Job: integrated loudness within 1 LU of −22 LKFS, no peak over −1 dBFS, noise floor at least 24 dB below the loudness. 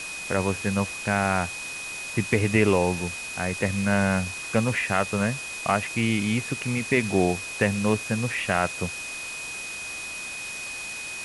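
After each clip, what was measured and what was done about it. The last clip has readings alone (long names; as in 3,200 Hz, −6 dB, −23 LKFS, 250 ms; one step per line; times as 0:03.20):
interfering tone 2,500 Hz; level of the tone −34 dBFS; background noise floor −35 dBFS; target noise floor −50 dBFS; integrated loudness −26.0 LKFS; sample peak −5.5 dBFS; target loudness −22.0 LKFS
→ notch filter 2,500 Hz, Q 30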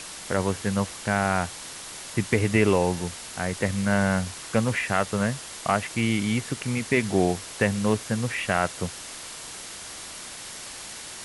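interfering tone none found; background noise floor −40 dBFS; target noise floor −51 dBFS
→ broadband denoise 11 dB, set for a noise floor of −40 dBFS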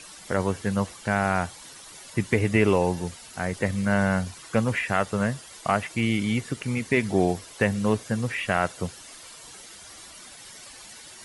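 background noise floor −46 dBFS; target noise floor −50 dBFS
→ broadband denoise 6 dB, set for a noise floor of −46 dBFS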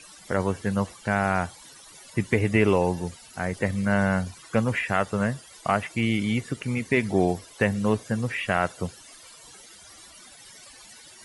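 background noise floor −49 dBFS; target noise floor −50 dBFS
→ broadband denoise 6 dB, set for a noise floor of −49 dBFS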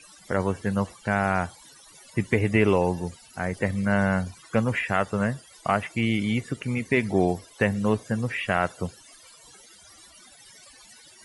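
background noise floor −52 dBFS; integrated loudness −26.0 LKFS; sample peak −6.0 dBFS; target loudness −22.0 LKFS
→ level +4 dB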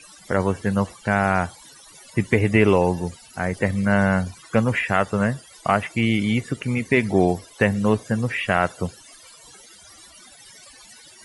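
integrated loudness −22.0 LKFS; sample peak −2.0 dBFS; background noise floor −48 dBFS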